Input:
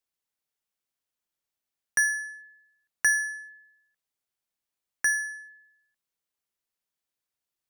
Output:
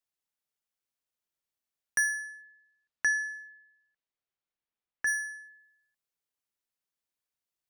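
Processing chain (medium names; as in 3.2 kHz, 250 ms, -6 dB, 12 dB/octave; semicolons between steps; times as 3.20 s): 2.44–5.06 s: low-pass 6.4 kHz -> 2.9 kHz 12 dB/octave; trim -3.5 dB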